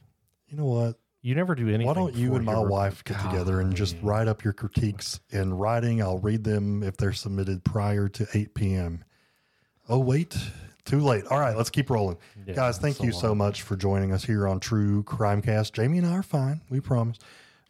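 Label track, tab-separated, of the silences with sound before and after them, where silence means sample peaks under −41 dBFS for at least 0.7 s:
9.020000	9.890000	silence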